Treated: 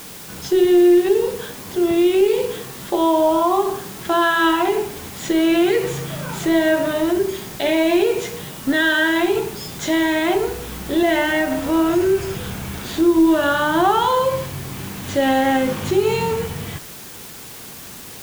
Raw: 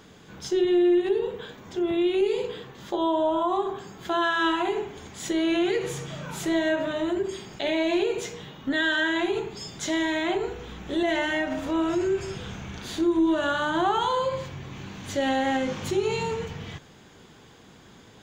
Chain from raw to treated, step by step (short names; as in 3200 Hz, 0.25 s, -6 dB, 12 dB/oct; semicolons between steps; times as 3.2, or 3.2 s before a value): high shelf 3700 Hz -6.5 dB; in parallel at -6 dB: requantised 6-bit, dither triangular; on the sum: gain +4.5 dB